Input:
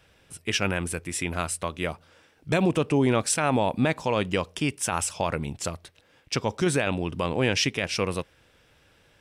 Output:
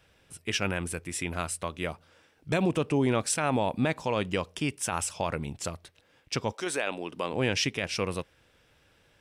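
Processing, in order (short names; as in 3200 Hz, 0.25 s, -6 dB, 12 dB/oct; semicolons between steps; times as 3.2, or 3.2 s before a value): 6.52–7.32 HPF 530 Hz -> 240 Hz 12 dB/oct; gain -3.5 dB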